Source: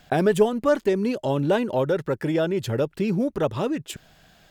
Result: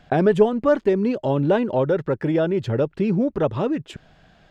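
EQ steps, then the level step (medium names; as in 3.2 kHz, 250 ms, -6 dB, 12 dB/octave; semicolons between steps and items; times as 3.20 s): tape spacing loss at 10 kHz 20 dB; +3.5 dB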